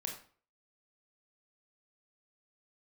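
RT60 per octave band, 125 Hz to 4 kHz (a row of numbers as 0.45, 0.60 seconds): 0.45, 0.45, 0.45, 0.45, 0.40, 0.35 seconds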